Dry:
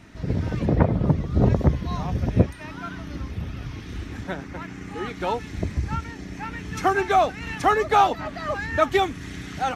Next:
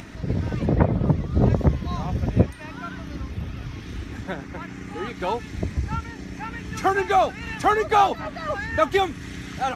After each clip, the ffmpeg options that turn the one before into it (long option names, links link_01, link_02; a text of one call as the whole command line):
ffmpeg -i in.wav -af "acompressor=mode=upward:threshold=-32dB:ratio=2.5" out.wav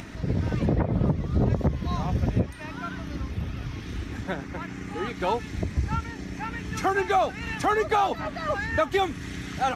ffmpeg -i in.wav -af "alimiter=limit=-13.5dB:level=0:latency=1:release=167" out.wav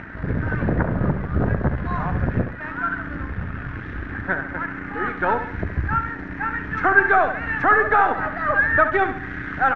ffmpeg -i in.wav -filter_complex "[0:a]asplit=2[link_01][link_02];[link_02]acrusher=bits=3:dc=4:mix=0:aa=0.000001,volume=-5dB[link_03];[link_01][link_03]amix=inputs=2:normalize=0,lowpass=frequency=1600:width_type=q:width=4.9,aecho=1:1:69|138|207|276|345:0.335|0.144|0.0619|0.0266|0.0115,volume=-1dB" out.wav